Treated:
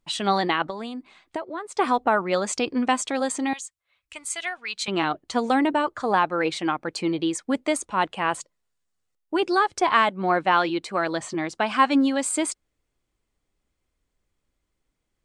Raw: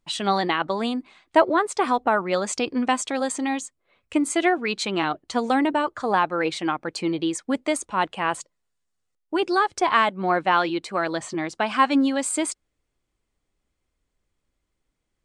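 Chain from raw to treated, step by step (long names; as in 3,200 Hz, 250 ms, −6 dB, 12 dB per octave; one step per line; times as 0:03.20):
0:00.66–0:01.78: downward compressor 6 to 1, threshold −30 dBFS, peak gain reduction 17 dB
0:03.53–0:04.88: guitar amp tone stack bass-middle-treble 10-0-10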